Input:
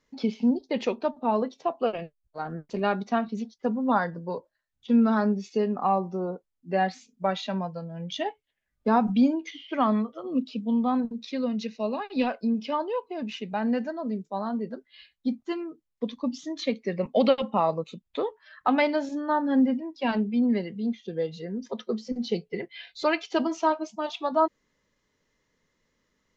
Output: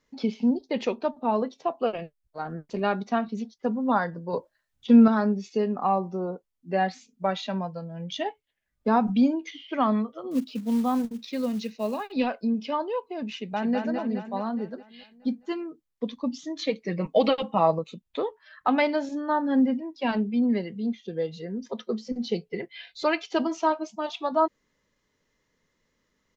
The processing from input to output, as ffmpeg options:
-filter_complex "[0:a]asettb=1/sr,asplit=3[a][b][c];[a]atrim=end=4.334[d];[b]atrim=start=4.33:end=5.08,asetpts=PTS-STARTPTS,afade=t=in:d=0.004:c=qsin,afade=t=out:st=0.746:d=0.004:c=qsin,acontrast=49[e];[c]atrim=start=5.076[f];[d][e]acrossfade=d=0.004:c1=hsin:c2=qsin[g];[g][f]acrossfade=d=0.004:c1=qsin:c2=hsin,asettb=1/sr,asplit=3[h][i][j];[h]atrim=end=10.314[k];[i]atrim=start=10.31:end=12.12,asetpts=PTS-STARTPTS,afade=t=in:d=0.004:c=qsin,afade=t=out:st=1.806:d=0.004:c=qsin,acrusher=bits=6:mode=log:mix=0:aa=0.000001[l];[j]atrim=start=12.116[m];[k][l]acrossfade=d=0.004:c1=hsin:c2=qsin[n];[n][m]acrossfade=d=0.004:c1=qsin:c2=hsin,asplit=2[o][p];[p]afade=t=in:st=13.35:d=0.01,afade=t=out:st=13.77:d=0.01,aecho=0:1:210|420|630|840|1050|1260|1470|1680|1890:0.630957|0.378574|0.227145|0.136287|0.0817721|0.0490632|0.0294379|0.0176628|0.0105977[q];[o][q]amix=inputs=2:normalize=0,asettb=1/sr,asplit=3[r][s][t];[r]atrim=end=16.594[u];[s]atrim=start=16.59:end=17.79,asetpts=PTS-STARTPTS,afade=t=in:d=0.004:c=qsin,afade=t=out:st=1.196:d=0.004:c=qsin,aecho=1:1:6.3:0.65,atrim=end_sample=52920[v];[t]atrim=start=17.786[w];[u][v]acrossfade=d=0.004:c1=hsin:c2=qsin[x];[x][w]acrossfade=d=0.004:c1=qsin:c2=hsin"

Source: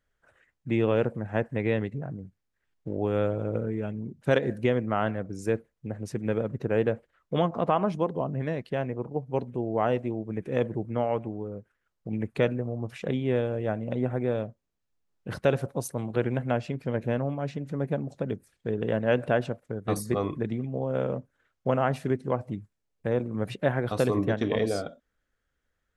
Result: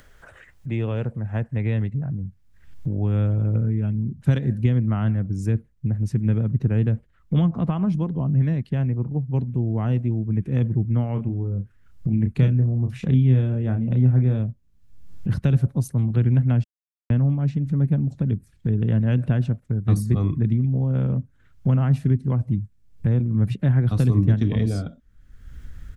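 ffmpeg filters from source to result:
-filter_complex "[0:a]asplit=3[a][b][c];[a]afade=t=out:st=11.15:d=0.02[d];[b]asplit=2[e][f];[f]adelay=31,volume=-6.5dB[g];[e][g]amix=inputs=2:normalize=0,afade=t=in:st=11.15:d=0.02,afade=t=out:st=14.38:d=0.02[h];[c]afade=t=in:st=14.38:d=0.02[i];[d][h][i]amix=inputs=3:normalize=0,asplit=3[j][k][l];[j]atrim=end=16.64,asetpts=PTS-STARTPTS,afade=t=out:st=16.636:d=0.004:c=hsin[m];[k]atrim=start=16.64:end=17.1,asetpts=PTS-STARTPTS,volume=0[n];[l]atrim=start=17.1,asetpts=PTS-STARTPTS,afade=t=in:d=0.004:c=hsin[o];[m][n][o]concat=n=3:v=0:a=1,acompressor=mode=upward:threshold=-30dB:ratio=2.5,asubboost=boost=11:cutoff=160,acrossover=split=260|3000[p][q][r];[q]acompressor=threshold=-26dB:ratio=6[s];[p][s][r]amix=inputs=3:normalize=0,volume=-2dB"

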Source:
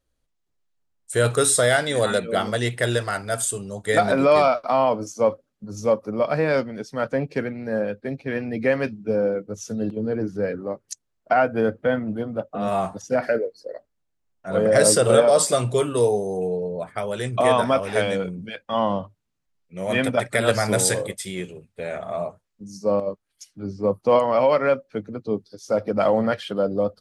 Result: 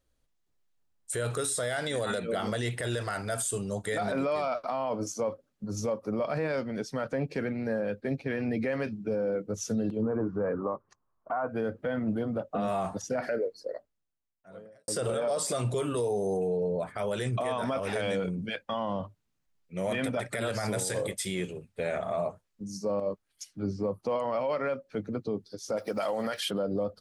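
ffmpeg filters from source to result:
-filter_complex "[0:a]asettb=1/sr,asplit=3[a][b][c];[a]atrim=end=10.024[d];[b]atrim=start=10.02:end=11.49,asetpts=PTS-STARTPTS,afade=t=in:d=0.004:c=qsin,afade=t=out:st=1.466:d=0.004:c=qsin,lowpass=f=1.1k:t=q:w=5.6[e];[c]atrim=start=11.486[f];[d][e]acrossfade=d=0.004:c1=hsin:c2=qsin[g];[g][f]acrossfade=d=0.004:c1=qsin:c2=hsin,asplit=3[h][i][j];[h]afade=t=out:st=25.76:d=0.02[k];[i]aemphasis=mode=production:type=riaa,afade=t=in:st=25.76:d=0.02,afade=t=out:st=26.49:d=0.02[l];[j]afade=t=in:st=26.49:d=0.02[m];[k][l][m]amix=inputs=3:normalize=0,asplit=2[n][o];[n]atrim=end=14.88,asetpts=PTS-STARTPTS,afade=t=out:st=13.55:d=1.33:c=qua[p];[o]atrim=start=14.88,asetpts=PTS-STARTPTS,afade=t=in:d=0.004:c=hsin[q];[p][q]concat=n=2:v=0:a=1,acompressor=threshold=-23dB:ratio=4,alimiter=limit=-22dB:level=0:latency=1:release=29"

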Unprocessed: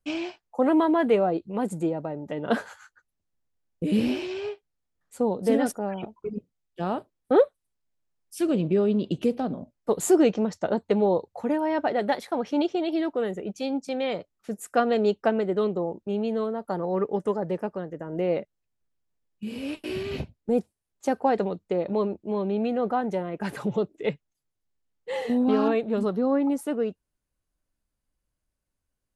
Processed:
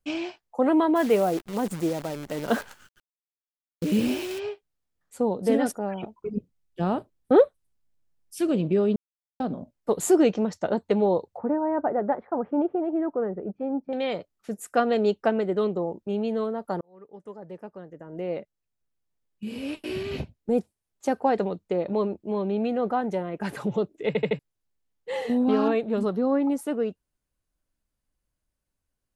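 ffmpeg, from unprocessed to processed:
-filter_complex "[0:a]asplit=3[a][b][c];[a]afade=t=out:st=0.95:d=0.02[d];[b]acrusher=bits=7:dc=4:mix=0:aa=0.000001,afade=t=in:st=0.95:d=0.02,afade=t=out:st=4.38:d=0.02[e];[c]afade=t=in:st=4.38:d=0.02[f];[d][e][f]amix=inputs=3:normalize=0,asettb=1/sr,asplit=3[g][h][i];[g]atrim=end=6.344[j];[h]atrim=start=6.34:end=8.39,asetpts=PTS-STARTPTS,afade=t=in:d=0.004:c=qsin,afade=t=out:st=2.046:d=0.004:c=qsin,lowshelf=f=240:g=8.5[k];[i]atrim=start=8.386[l];[j][k]acrossfade=d=0.004:c1=hsin:c2=qsin[m];[m][l]acrossfade=d=0.004:c1=qsin:c2=hsin,asettb=1/sr,asplit=3[n][o][p];[n]atrim=end=11.374[q];[o]atrim=start=11.37:end=13.93,asetpts=PTS-STARTPTS,afade=t=in:d=0.004:c=qsin,afade=t=out:st=2.556:d=0.004:c=qsin,lowpass=f=1.4k:w=0.5412,lowpass=f=1.4k:w=1.3066[r];[p]atrim=start=13.926[s];[q][r]acrossfade=d=0.004:c1=hsin:c2=qsin[t];[t][s]acrossfade=d=0.004:c1=qsin:c2=hsin,asplit=8[u][v][w][x][y][z][aa][ab];[u]atrim=end=8.96,asetpts=PTS-STARTPTS,afade=t=out:st=8.956:d=0.004:c=hsin[ac];[v]atrim=start=8.96:end=9.4,asetpts=PTS-STARTPTS,volume=0[ad];[w]atrim=start=9.4:end=16.81,asetpts=PTS-STARTPTS,afade=t=in:d=0.004:c=hsin,afade=t=out:st=7.406:d=0.004:c=hsin[ae];[x]atrim=start=16.81:end=24.152,asetpts=PTS-STARTPTS,afade=t=in:d=2.72[af];[y]atrim=start=24.068:end=24.152[ag];[z]atrim=start=24.068:end=24.152[ah];[aa]atrim=start=24.068:end=24.152[ai];[ab]atrim=start=24.388[aj];[ac][ad][ae][af]concat=n=4:v=0:a=1[ak];[ak][ag]acrossfade=d=0.004:c1=hsin:c2=hsin[al];[al][ah]acrossfade=d=0.004:c1=hsin:c2=hsin[am];[am][ai]acrossfade=d=0.004:c1=hsin:c2=hsin[an];[an][aj]acrossfade=d=0.004:c1=hsin:c2=hsin"

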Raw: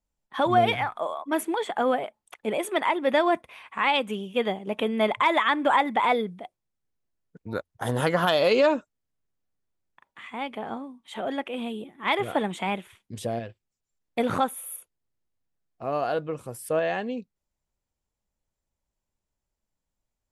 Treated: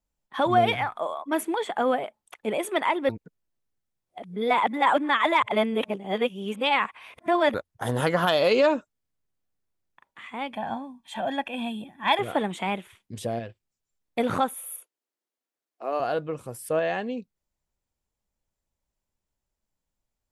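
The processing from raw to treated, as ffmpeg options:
-filter_complex "[0:a]asettb=1/sr,asplit=3[a][b][c];[a]atrim=end=10.534[d];[b]atrim=start=10.53:end=12.19,asetpts=PTS-STARTPTS,afade=t=in:d=0.004:c=qsin,afade=t=out:st=1.656:d=0.004:c=qsin,aecho=1:1:1.2:0.79,atrim=end_sample=73206[e];[c]atrim=start=12.186[f];[d][e]acrossfade=d=0.004:c1=hsin:c2=qsin[g];[g][f]acrossfade=d=0.004:c1=qsin:c2=hsin,asettb=1/sr,asplit=3[h][i][j];[h]atrim=end=14.544[k];[i]atrim=start=14.54:end=16,asetpts=PTS-STARTPTS,afade=t=in:d=0.004:c=qsin,afade=t=out:st=1.456:d=0.004:c=qsin,highpass=f=290:w=0.5412,highpass=f=290:w=1.3066[l];[j]atrim=start=15.996[m];[k][l]acrossfade=d=0.004:c1=hsin:c2=qsin[n];[n][m]acrossfade=d=0.004:c1=qsin:c2=hsin,asplit=3[o][p][q];[o]atrim=end=3.092[r];[p]atrim=start=3.088:end=7.542,asetpts=PTS-STARTPTS,areverse[s];[q]atrim=start=7.538[t];[r][s]acrossfade=d=0.004:c1=hsin:c2=hsin[u];[u][t]acrossfade=d=0.004:c1=hsin:c2=hsin"

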